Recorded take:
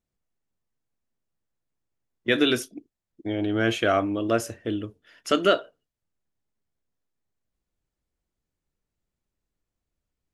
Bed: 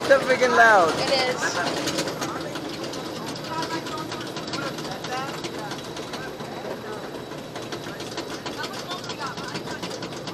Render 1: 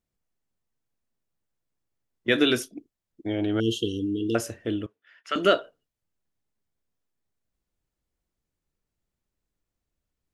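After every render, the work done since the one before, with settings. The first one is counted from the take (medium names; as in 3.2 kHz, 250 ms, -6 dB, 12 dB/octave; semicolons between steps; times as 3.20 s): 3.60–4.35 s: brick-wall FIR band-stop 480–2700 Hz; 4.86–5.36 s: band-pass filter 1.8 kHz, Q 1.3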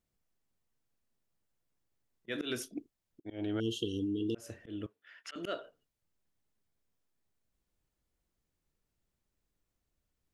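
slow attack 370 ms; compression 4:1, threshold -32 dBFS, peak gain reduction 10.5 dB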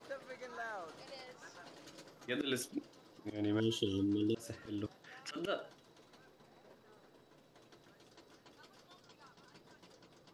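add bed -29.5 dB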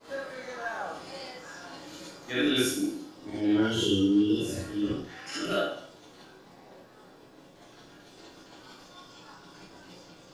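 spectral sustain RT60 0.66 s; gated-style reverb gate 90 ms rising, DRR -7 dB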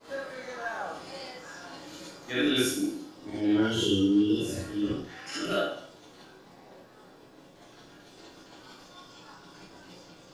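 no audible change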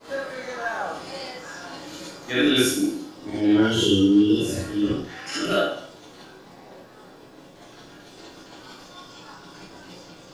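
trim +6.5 dB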